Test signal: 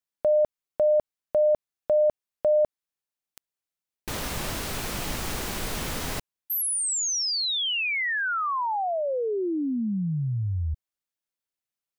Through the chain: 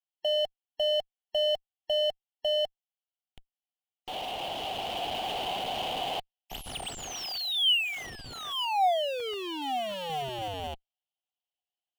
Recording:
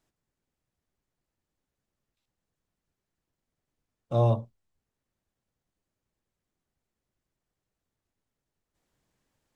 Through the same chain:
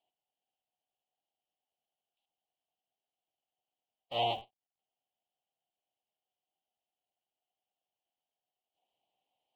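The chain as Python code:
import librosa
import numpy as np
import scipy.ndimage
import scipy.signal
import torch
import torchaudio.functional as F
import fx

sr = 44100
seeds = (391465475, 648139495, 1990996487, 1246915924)

p1 = fx.halfwave_hold(x, sr)
p2 = fx.double_bandpass(p1, sr, hz=1500.0, octaves=2.0)
p3 = fx.spec_gate(p2, sr, threshold_db=-30, keep='strong')
p4 = fx.schmitt(p3, sr, flips_db=-42.0)
p5 = p3 + F.gain(torch.from_numpy(p4), -11.0).numpy()
p6 = fx.rider(p5, sr, range_db=3, speed_s=2.0)
y = F.gain(torch.from_numpy(p6), 1.5).numpy()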